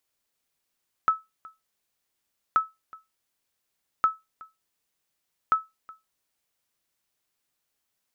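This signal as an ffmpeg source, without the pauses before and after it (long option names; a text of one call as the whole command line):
ffmpeg -f lavfi -i "aevalsrc='0.237*(sin(2*PI*1300*mod(t,1.48))*exp(-6.91*mod(t,1.48)/0.2)+0.0668*sin(2*PI*1300*max(mod(t,1.48)-0.37,0))*exp(-6.91*max(mod(t,1.48)-0.37,0)/0.2))':duration=5.92:sample_rate=44100" out.wav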